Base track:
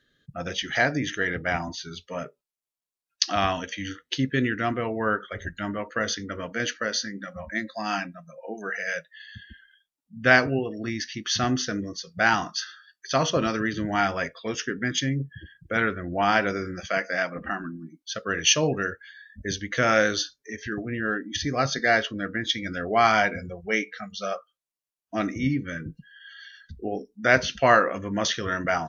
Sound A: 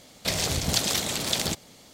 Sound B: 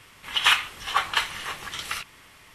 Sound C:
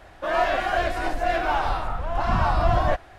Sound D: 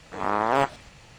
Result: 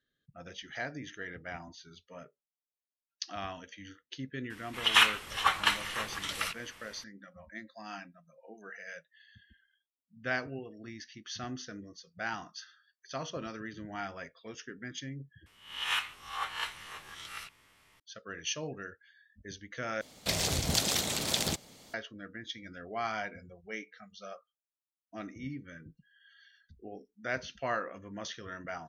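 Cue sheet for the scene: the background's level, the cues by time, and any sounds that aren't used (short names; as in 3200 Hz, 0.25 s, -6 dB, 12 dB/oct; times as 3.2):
base track -15.5 dB
4.5 add B -3 dB
15.46 replace with B -14.5 dB + spectral swells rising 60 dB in 0.51 s
20.01 replace with A -4 dB
not used: C, D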